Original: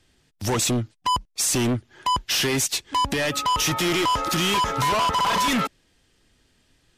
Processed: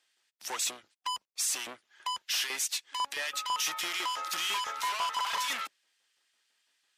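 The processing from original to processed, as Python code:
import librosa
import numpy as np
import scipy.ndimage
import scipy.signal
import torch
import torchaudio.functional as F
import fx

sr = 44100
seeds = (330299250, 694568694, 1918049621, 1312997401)

y = fx.octave_divider(x, sr, octaves=2, level_db=-4.0)
y = fx.filter_lfo_highpass(y, sr, shape='saw_up', hz=6.0, low_hz=720.0, high_hz=1900.0, q=0.75)
y = y * 10.0 ** (-7.5 / 20.0)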